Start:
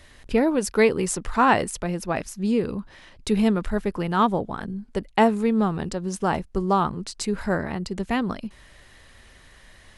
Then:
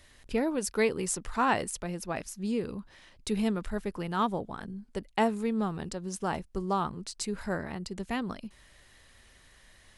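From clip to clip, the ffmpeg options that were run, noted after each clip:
-af "highshelf=f=4k:g=6,volume=-8.5dB"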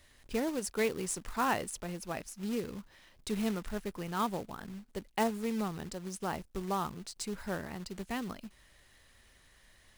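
-af "acrusher=bits=3:mode=log:mix=0:aa=0.000001,volume=-4.5dB"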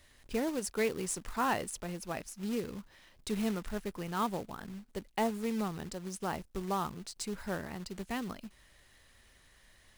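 -af "volume=22.5dB,asoftclip=hard,volume=-22.5dB"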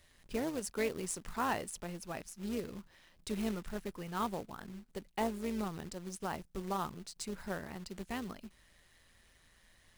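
-af "tremolo=f=170:d=0.462,volume=-1dB"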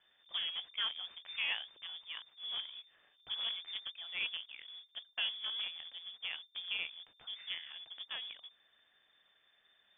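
-filter_complex "[0:a]asplit=2[a][b];[b]acrusher=bits=6:dc=4:mix=0:aa=0.000001,volume=-10dB[c];[a][c]amix=inputs=2:normalize=0,lowpass=f=3.1k:t=q:w=0.5098,lowpass=f=3.1k:t=q:w=0.6013,lowpass=f=3.1k:t=q:w=0.9,lowpass=f=3.1k:t=q:w=2.563,afreqshift=-3600,volume=-5dB"

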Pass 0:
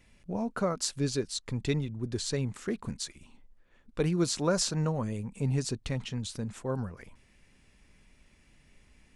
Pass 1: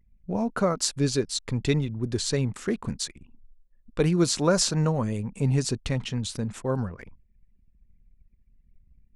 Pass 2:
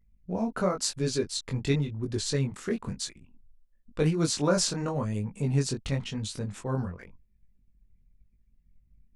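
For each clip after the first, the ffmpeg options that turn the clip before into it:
-af "anlmdn=0.00158,volume=5.5dB"
-af "flanger=delay=19:depth=3.5:speed=0.95"

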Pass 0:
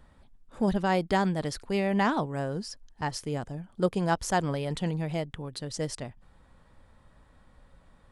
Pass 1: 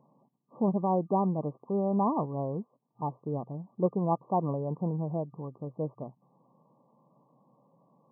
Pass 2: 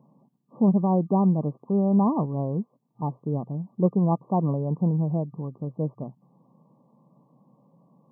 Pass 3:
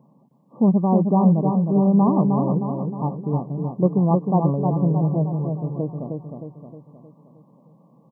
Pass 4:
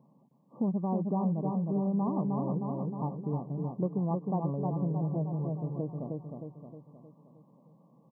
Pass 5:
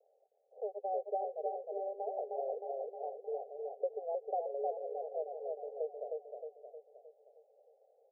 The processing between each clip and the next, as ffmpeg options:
-af "afftfilt=real='re*between(b*sr/4096,120,1200)':imag='im*between(b*sr/4096,120,1200)':win_size=4096:overlap=0.75,volume=-1dB"
-af "equalizer=f=180:w=0.8:g=9"
-af "aecho=1:1:311|622|933|1244|1555|1866|2177:0.596|0.304|0.155|0.079|0.0403|0.0206|0.0105,volume=3dB"
-af "acompressor=threshold=-22dB:ratio=2.5,volume=-7dB"
-af "asuperpass=centerf=570:order=20:qfactor=1.5,volume=2.5dB"

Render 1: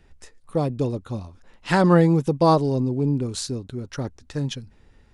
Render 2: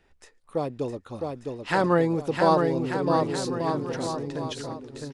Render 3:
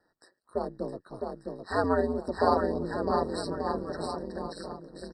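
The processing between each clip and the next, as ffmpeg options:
-filter_complex "[0:a]bass=f=250:g=-10,treble=f=4k:g=-4,asplit=2[a][b];[b]aecho=0:1:660|1188|1610|1948|2219:0.631|0.398|0.251|0.158|0.1[c];[a][c]amix=inputs=2:normalize=0,volume=-2.5dB"
-af "highpass=180,aeval=exprs='val(0)*sin(2*PI*91*n/s)':c=same,afftfilt=real='re*eq(mod(floor(b*sr/1024/1900),2),0)':imag='im*eq(mod(floor(b*sr/1024/1900),2),0)':win_size=1024:overlap=0.75,volume=-1dB"

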